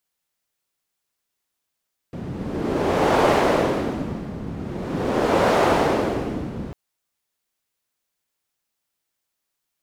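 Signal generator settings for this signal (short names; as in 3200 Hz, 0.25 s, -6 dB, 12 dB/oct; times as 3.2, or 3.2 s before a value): wind-like swept noise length 4.60 s, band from 180 Hz, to 610 Hz, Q 1.1, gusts 2, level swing 14 dB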